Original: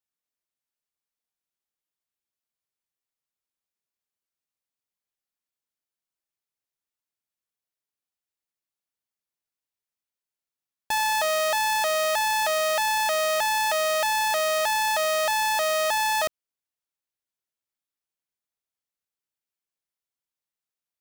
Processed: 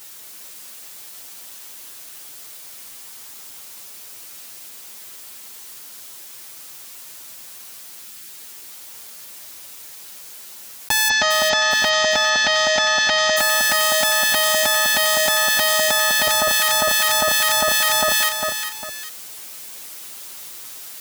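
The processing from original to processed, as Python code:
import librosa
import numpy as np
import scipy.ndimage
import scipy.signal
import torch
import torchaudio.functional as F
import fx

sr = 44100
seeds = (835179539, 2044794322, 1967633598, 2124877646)

y = fx.lower_of_two(x, sr, delay_ms=8.6)
y = fx.spec_erase(y, sr, start_s=8.02, length_s=0.26, low_hz=370.0, high_hz=1200.0)
y = fx.steep_lowpass(y, sr, hz=6500.0, slope=48, at=(11.08, 13.36), fade=0.02)
y = fx.echo_alternate(y, sr, ms=201, hz=1400.0, feedback_pct=62, wet_db=-3.0)
y = fx.rider(y, sr, range_db=3, speed_s=0.5)
y = fx.highpass(y, sr, hz=140.0, slope=6)
y = fx.high_shelf(y, sr, hz=3100.0, db=7.5)
y = fx.env_flatten(y, sr, amount_pct=100)
y = F.gain(torch.from_numpy(y), 6.0).numpy()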